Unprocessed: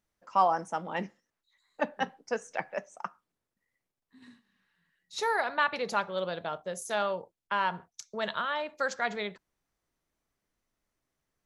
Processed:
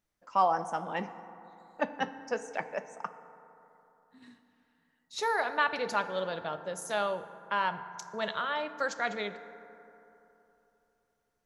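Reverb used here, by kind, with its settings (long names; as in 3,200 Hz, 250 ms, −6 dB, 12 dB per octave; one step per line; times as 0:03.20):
feedback delay network reverb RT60 3.2 s, high-frequency decay 0.35×, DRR 11 dB
level −1 dB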